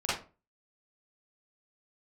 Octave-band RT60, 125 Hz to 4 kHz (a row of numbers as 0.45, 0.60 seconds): 0.40, 0.40, 0.35, 0.30, 0.25, 0.20 seconds